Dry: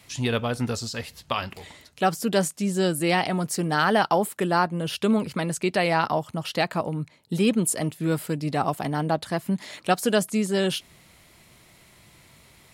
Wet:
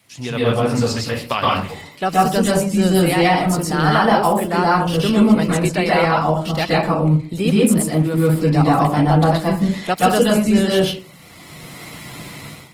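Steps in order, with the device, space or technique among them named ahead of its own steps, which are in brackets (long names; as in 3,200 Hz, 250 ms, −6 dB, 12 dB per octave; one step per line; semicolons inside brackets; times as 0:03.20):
far-field microphone of a smart speaker (convolution reverb RT60 0.45 s, pre-delay 117 ms, DRR −4.5 dB; high-pass filter 110 Hz 12 dB per octave; automatic gain control gain up to 16 dB; level −2 dB; Opus 20 kbit/s 48,000 Hz)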